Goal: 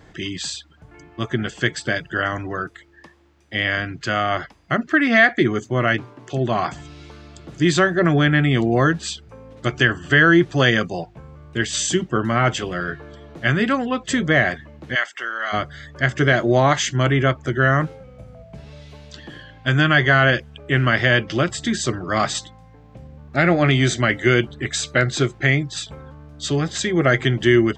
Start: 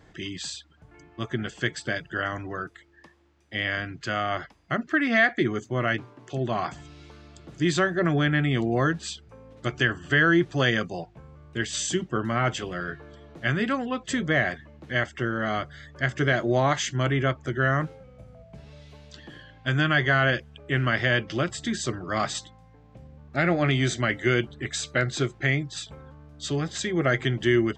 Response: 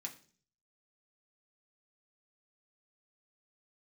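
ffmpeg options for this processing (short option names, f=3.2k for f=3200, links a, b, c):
-filter_complex "[0:a]asplit=3[a][b][c];[a]afade=t=out:st=14.94:d=0.02[d];[b]highpass=1k,afade=t=in:st=14.94:d=0.02,afade=t=out:st=15.52:d=0.02[e];[c]afade=t=in:st=15.52:d=0.02[f];[d][e][f]amix=inputs=3:normalize=0,volume=6.5dB"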